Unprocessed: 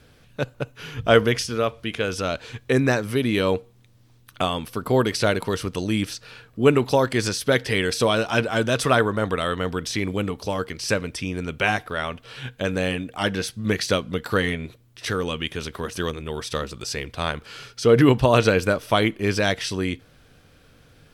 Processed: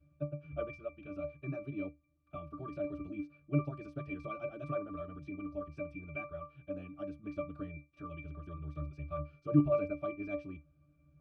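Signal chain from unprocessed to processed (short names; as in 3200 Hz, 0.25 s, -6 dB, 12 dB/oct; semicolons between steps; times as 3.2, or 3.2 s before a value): octave resonator D, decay 0.4 s; time stretch by phase-locked vocoder 0.53×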